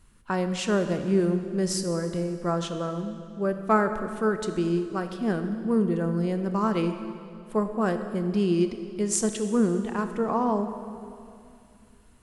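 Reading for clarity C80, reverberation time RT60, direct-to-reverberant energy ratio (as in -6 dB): 9.5 dB, 2.5 s, 7.5 dB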